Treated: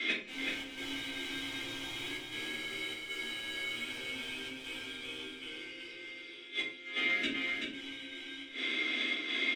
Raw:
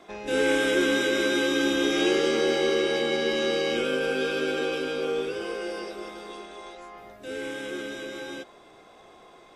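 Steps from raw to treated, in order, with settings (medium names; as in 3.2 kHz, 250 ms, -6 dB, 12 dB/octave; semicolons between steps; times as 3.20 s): vowel filter i; tilt shelf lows -7 dB, about 810 Hz; overdrive pedal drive 25 dB, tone 6.4 kHz, clips at -22.5 dBFS; inverted gate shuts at -31 dBFS, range -26 dB; trance gate "xxxx.xxxxxxxxx." 97 bpm -12 dB; delay 381 ms -4.5 dB; simulated room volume 270 m³, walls furnished, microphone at 4.1 m; trim +6.5 dB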